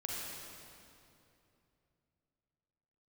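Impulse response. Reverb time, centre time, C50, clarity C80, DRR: 2.8 s, 0.158 s, -3.0 dB, -1.0 dB, -4.0 dB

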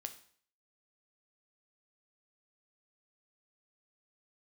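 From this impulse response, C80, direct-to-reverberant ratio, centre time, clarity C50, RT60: 16.0 dB, 7.0 dB, 8 ms, 12.5 dB, 0.55 s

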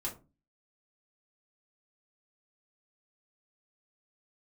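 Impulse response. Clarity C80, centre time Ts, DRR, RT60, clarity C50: 18.0 dB, 19 ms, -5.0 dB, 0.30 s, 11.5 dB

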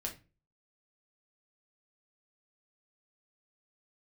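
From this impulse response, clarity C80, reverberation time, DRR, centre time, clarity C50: 18.5 dB, not exponential, 0.0 dB, 14 ms, 12.0 dB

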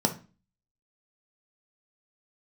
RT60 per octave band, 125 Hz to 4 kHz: 0.45, 0.50, 0.35, 0.35, 0.35, 0.30 s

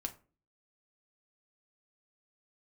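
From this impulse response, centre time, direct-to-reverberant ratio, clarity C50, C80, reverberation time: 7 ms, 4.5 dB, 16.0 dB, 21.0 dB, not exponential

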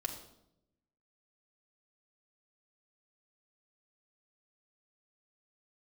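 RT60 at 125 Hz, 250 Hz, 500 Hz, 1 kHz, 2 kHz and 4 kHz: 1.2, 1.1, 0.90, 0.70, 0.55, 0.60 s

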